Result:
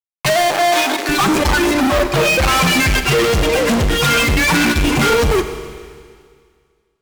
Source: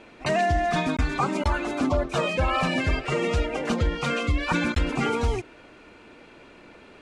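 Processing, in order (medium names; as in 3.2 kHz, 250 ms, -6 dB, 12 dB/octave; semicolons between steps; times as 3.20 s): expander on every frequency bin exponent 2; 1.74–2.40 s: distance through air 350 m; fuzz box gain 49 dB, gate -49 dBFS; 0.50–1.09 s: steep high-pass 310 Hz 36 dB/octave; Schroeder reverb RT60 2 s, combs from 28 ms, DRR 8.5 dB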